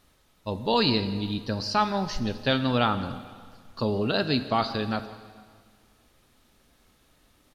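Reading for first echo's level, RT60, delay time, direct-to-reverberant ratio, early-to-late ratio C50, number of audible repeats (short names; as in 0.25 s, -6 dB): -20.5 dB, 1.8 s, 0.173 s, 10.0 dB, 11.5 dB, 1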